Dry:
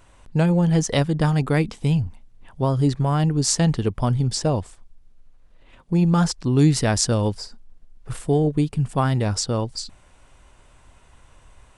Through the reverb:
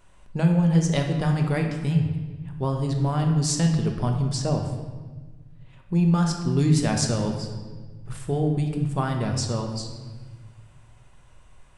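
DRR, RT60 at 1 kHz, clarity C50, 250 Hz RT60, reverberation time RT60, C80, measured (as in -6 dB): 2.0 dB, 1.3 s, 5.5 dB, 2.1 s, 1.4 s, 7.0 dB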